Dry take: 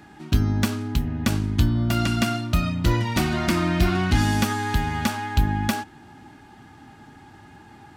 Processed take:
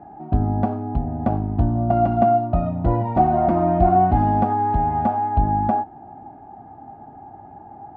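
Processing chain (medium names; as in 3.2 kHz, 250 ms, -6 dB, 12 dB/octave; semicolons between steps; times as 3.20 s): resonant low-pass 730 Hz, resonance Q 8.7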